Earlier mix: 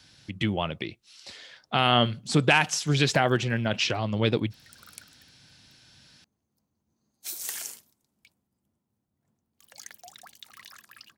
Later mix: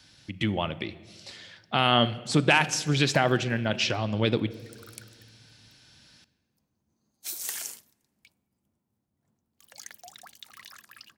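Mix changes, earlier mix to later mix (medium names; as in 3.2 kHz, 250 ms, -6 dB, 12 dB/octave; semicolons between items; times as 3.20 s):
speech -3.0 dB; reverb: on, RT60 1.7 s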